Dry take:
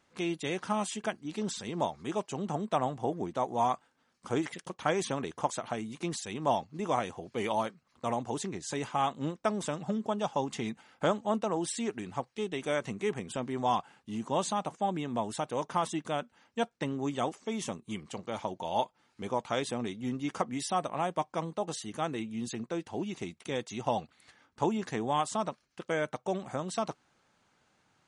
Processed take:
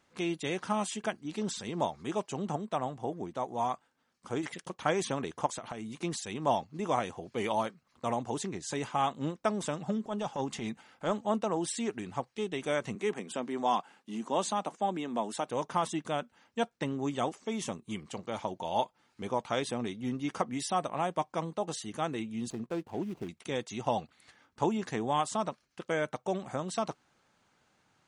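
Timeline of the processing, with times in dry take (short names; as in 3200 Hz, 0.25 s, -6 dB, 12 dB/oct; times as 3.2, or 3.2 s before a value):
2.56–4.43 gain -3.5 dB
5.46–5.97 compressor, threshold -35 dBFS
10.02–11.22 transient shaper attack -9 dB, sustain +1 dB
12.95–15.48 HPF 190 Hz 24 dB/oct
19.24–20.54 notch 7200 Hz
22.5–23.29 median filter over 25 samples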